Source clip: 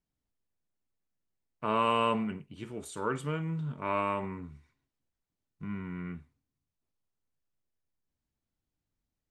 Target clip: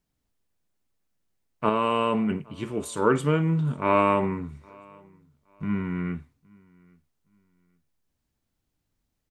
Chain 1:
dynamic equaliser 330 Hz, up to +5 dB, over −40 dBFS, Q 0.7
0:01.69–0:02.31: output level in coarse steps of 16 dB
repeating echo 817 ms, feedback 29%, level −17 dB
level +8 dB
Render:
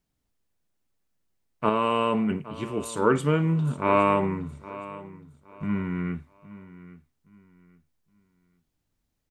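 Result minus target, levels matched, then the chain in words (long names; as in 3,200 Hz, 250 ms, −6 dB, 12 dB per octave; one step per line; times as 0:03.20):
echo-to-direct +10.5 dB
dynamic equaliser 330 Hz, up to +5 dB, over −40 dBFS, Q 0.7
0:01.69–0:02.31: output level in coarse steps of 16 dB
repeating echo 817 ms, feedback 29%, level −27.5 dB
level +8 dB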